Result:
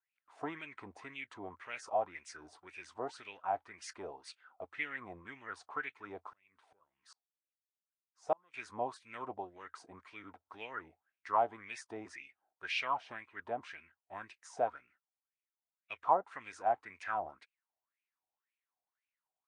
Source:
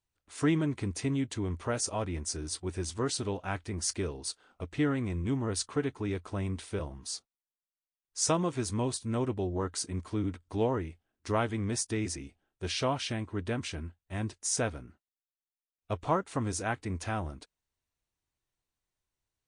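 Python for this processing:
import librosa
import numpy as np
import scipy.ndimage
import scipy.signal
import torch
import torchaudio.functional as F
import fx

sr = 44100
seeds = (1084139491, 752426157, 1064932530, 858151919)

y = fx.wah_lfo(x, sr, hz=1.9, low_hz=700.0, high_hz=2500.0, q=7.1)
y = fx.tremolo_decay(y, sr, direction='swelling', hz=2.5, depth_db=36, at=(6.33, 8.54))
y = F.gain(torch.from_numpy(y), 9.0).numpy()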